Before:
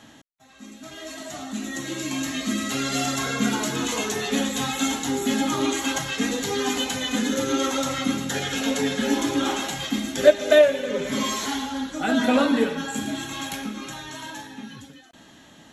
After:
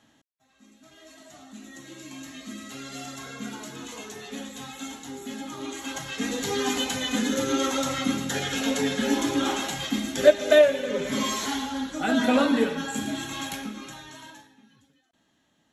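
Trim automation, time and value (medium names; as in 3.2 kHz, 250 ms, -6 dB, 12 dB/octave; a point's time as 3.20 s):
5.55 s -13 dB
6.49 s -1.5 dB
13.44 s -1.5 dB
14.30 s -9 dB
14.58 s -19 dB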